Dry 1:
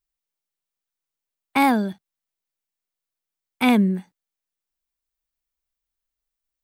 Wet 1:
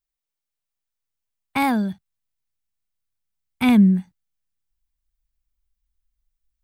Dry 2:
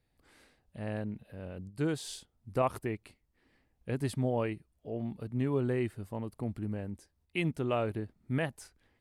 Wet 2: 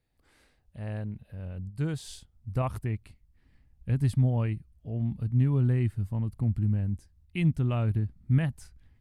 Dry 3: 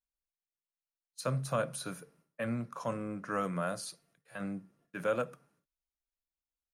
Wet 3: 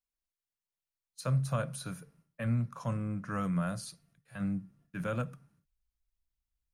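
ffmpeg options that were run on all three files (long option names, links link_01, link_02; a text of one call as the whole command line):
ffmpeg -i in.wav -af "asubboost=boost=10:cutoff=140,volume=-2dB" out.wav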